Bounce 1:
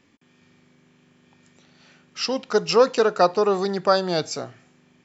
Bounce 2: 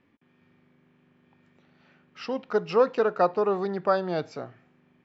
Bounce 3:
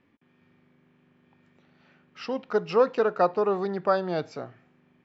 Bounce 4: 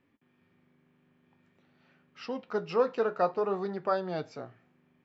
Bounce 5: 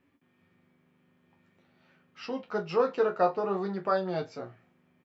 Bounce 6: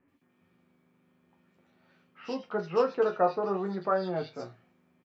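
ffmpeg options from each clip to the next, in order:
ffmpeg -i in.wav -af "lowpass=2300,volume=-4.5dB" out.wav
ffmpeg -i in.wav -af anull out.wav
ffmpeg -i in.wav -af "flanger=delay=7.2:depth=6.1:regen=-61:speed=0.49:shape=sinusoidal,volume=-1dB" out.wav
ffmpeg -i in.wav -af "aecho=1:1:11|25|42:0.531|0.335|0.178" out.wav
ffmpeg -i in.wav -filter_complex "[0:a]bandreject=frequency=50:width_type=h:width=6,bandreject=frequency=100:width_type=h:width=6,bandreject=frequency=150:width_type=h:width=6,acrossover=split=2400[link_01][link_02];[link_02]adelay=80[link_03];[link_01][link_03]amix=inputs=2:normalize=0" out.wav

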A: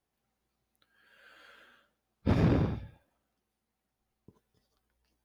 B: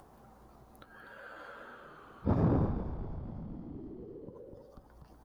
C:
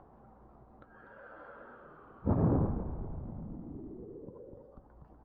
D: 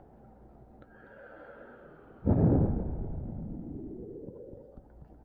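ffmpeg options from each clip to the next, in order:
ffmpeg -i in.wav -filter_complex "[0:a]highshelf=frequency=1600:width_type=q:width=1.5:gain=-12.5,asplit=9[link_01][link_02][link_03][link_04][link_05][link_06][link_07][link_08][link_09];[link_02]adelay=245,afreqshift=-81,volume=-9dB[link_10];[link_03]adelay=490,afreqshift=-162,volume=-13.3dB[link_11];[link_04]adelay=735,afreqshift=-243,volume=-17.6dB[link_12];[link_05]adelay=980,afreqshift=-324,volume=-21.9dB[link_13];[link_06]adelay=1225,afreqshift=-405,volume=-26.2dB[link_14];[link_07]adelay=1470,afreqshift=-486,volume=-30.5dB[link_15];[link_08]adelay=1715,afreqshift=-567,volume=-34.8dB[link_16];[link_09]adelay=1960,afreqshift=-648,volume=-39.1dB[link_17];[link_01][link_10][link_11][link_12][link_13][link_14][link_15][link_16][link_17]amix=inputs=9:normalize=0,acompressor=mode=upward:threshold=-32dB:ratio=2.5,volume=-2.5dB" out.wav
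ffmpeg -i in.wav -af "lowpass=1300" out.wav
ffmpeg -i in.wav -af "equalizer=frequency=1100:width=3:gain=-15,volume=4dB" out.wav

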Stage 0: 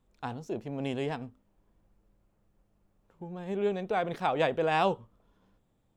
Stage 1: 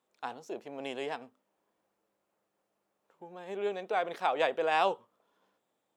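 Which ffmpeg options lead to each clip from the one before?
ffmpeg -i in.wav -af "highpass=450" out.wav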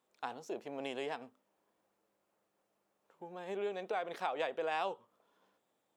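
ffmpeg -i in.wav -af "acompressor=threshold=-36dB:ratio=2.5" out.wav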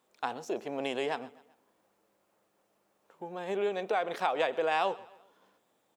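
ffmpeg -i in.wav -af "aecho=1:1:129|258|387:0.0944|0.0425|0.0191,volume=7dB" out.wav

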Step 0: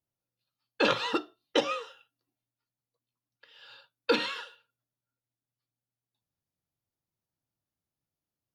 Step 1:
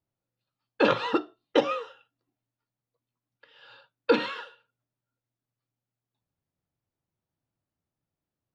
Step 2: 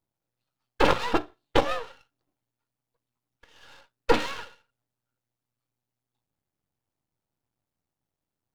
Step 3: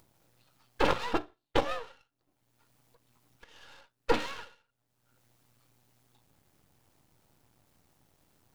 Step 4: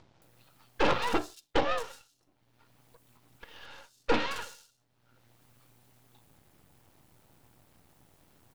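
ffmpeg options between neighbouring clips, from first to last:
ffmpeg -i in.wav -af "lowpass=frequency=1500:poles=1,volume=5dB" out.wav
ffmpeg -i in.wav -af "aeval=exprs='max(val(0),0)':channel_layout=same,equalizer=frequency=830:width_type=o:width=0.45:gain=3,volume=4.5dB" out.wav
ffmpeg -i in.wav -af "acompressor=mode=upward:threshold=-40dB:ratio=2.5,volume=-5.5dB" out.wav
ffmpeg -i in.wav -filter_complex "[0:a]acrossover=split=5700[link_01][link_02];[link_02]adelay=220[link_03];[link_01][link_03]amix=inputs=2:normalize=0,asoftclip=type=tanh:threshold=-21dB,volume=5.5dB" out.wav

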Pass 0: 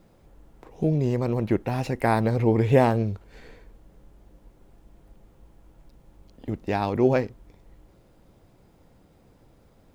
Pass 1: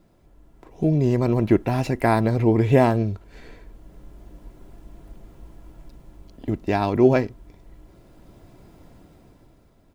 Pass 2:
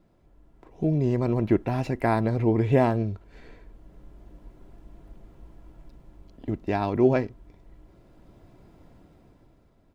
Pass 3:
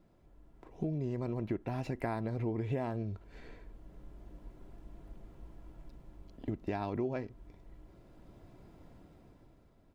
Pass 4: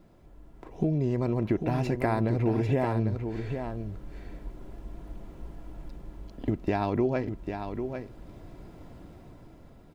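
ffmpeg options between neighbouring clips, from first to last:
ffmpeg -i in.wav -af "equalizer=frequency=160:width_type=o:width=0.87:gain=5,dynaudnorm=framelen=140:gausssize=13:maxgain=10dB,aecho=1:1:3:0.36,volume=-3dB" out.wav
ffmpeg -i in.wav -af "highshelf=frequency=5300:gain=-8.5,volume=-4dB" out.wav
ffmpeg -i in.wav -af "acompressor=threshold=-29dB:ratio=6,volume=-3dB" out.wav
ffmpeg -i in.wav -af "aecho=1:1:796:0.422,volume=8.5dB" out.wav

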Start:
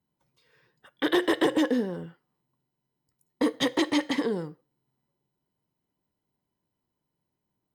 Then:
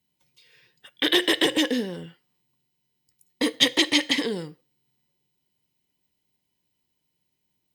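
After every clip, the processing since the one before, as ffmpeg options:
ffmpeg -i in.wav -af "highshelf=frequency=1800:width_type=q:width=1.5:gain=10" out.wav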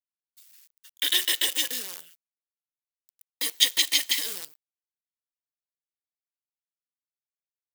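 ffmpeg -i in.wav -af "acrusher=bits=6:dc=4:mix=0:aa=0.000001,aderivative,volume=5dB" out.wav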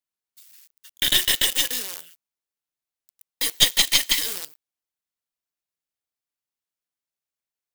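ffmpeg -i in.wav -af "aeval=exprs='(tanh(3.98*val(0)+0.65)-tanh(0.65))/3.98':channel_layout=same,volume=7.5dB" out.wav

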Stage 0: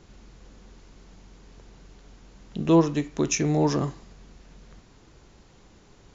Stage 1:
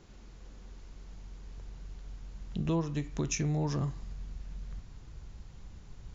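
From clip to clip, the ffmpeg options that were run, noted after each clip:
ffmpeg -i in.wav -af "asubboost=boost=5.5:cutoff=140,acompressor=threshold=-26dB:ratio=2.5,volume=-4dB" out.wav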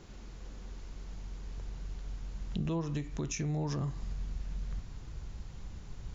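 ffmpeg -i in.wav -af "alimiter=level_in=5dB:limit=-24dB:level=0:latency=1:release=215,volume=-5dB,volume=4dB" out.wav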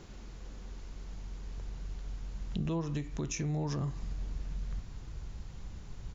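ffmpeg -i in.wav -filter_complex "[0:a]areverse,acompressor=mode=upward:threshold=-43dB:ratio=2.5,areverse,asplit=2[link_01][link_02];[link_02]adelay=641.4,volume=-23dB,highshelf=frequency=4000:gain=-14.4[link_03];[link_01][link_03]amix=inputs=2:normalize=0" out.wav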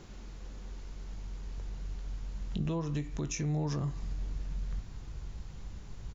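ffmpeg -i in.wav -filter_complex "[0:a]asplit=2[link_01][link_02];[link_02]adelay=20,volume=-12.5dB[link_03];[link_01][link_03]amix=inputs=2:normalize=0" out.wav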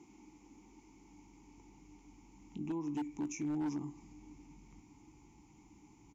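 ffmpeg -i in.wav -filter_complex "[0:a]aexciter=amount=7.5:drive=9.1:freq=6000,asplit=3[link_01][link_02][link_03];[link_01]bandpass=frequency=300:width_type=q:width=8,volume=0dB[link_04];[link_02]bandpass=frequency=870:width_type=q:width=8,volume=-6dB[link_05];[link_03]bandpass=frequency=2240:width_type=q:width=8,volume=-9dB[link_06];[link_04][link_05][link_06]amix=inputs=3:normalize=0,aeval=exprs='0.0141*(abs(mod(val(0)/0.0141+3,4)-2)-1)':channel_layout=same,volume=6dB" out.wav

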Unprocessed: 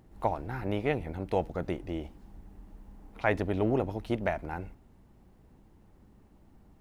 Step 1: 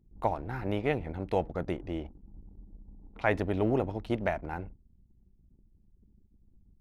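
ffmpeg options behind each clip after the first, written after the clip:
ffmpeg -i in.wav -af "anlmdn=0.00398" out.wav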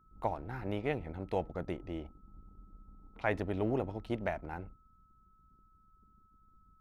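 ffmpeg -i in.wav -af "aeval=exprs='val(0)+0.000891*sin(2*PI*1300*n/s)':channel_layout=same,volume=-5dB" out.wav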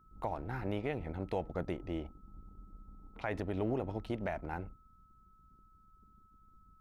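ffmpeg -i in.wav -af "alimiter=level_in=2.5dB:limit=-24dB:level=0:latency=1:release=113,volume=-2.5dB,volume=2dB" out.wav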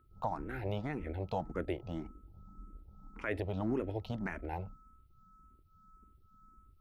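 ffmpeg -i in.wav -filter_complex "[0:a]asplit=2[link_01][link_02];[link_02]afreqshift=1.8[link_03];[link_01][link_03]amix=inputs=2:normalize=1,volume=3.5dB" out.wav

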